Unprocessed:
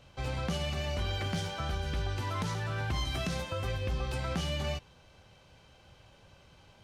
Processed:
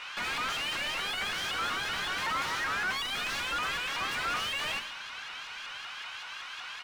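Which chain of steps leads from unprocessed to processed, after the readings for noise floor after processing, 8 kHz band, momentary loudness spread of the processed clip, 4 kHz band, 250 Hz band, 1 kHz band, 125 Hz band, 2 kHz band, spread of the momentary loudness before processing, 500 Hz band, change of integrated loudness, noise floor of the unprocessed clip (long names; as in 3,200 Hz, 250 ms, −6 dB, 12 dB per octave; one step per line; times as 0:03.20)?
−42 dBFS, +5.5 dB, 9 LU, +7.0 dB, −8.5 dB, +6.5 dB, −18.5 dB, +10.5 dB, 2 LU, −6.5 dB, +2.5 dB, −60 dBFS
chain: high-pass filter 1,200 Hz 24 dB per octave
mid-hump overdrive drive 35 dB, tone 1,700 Hz, clips at −22.5 dBFS
slap from a distant wall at 180 metres, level −21 dB
four-comb reverb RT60 0.67 s, combs from 31 ms, DRR 8 dB
pitch modulation by a square or saw wave saw up 5.3 Hz, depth 160 cents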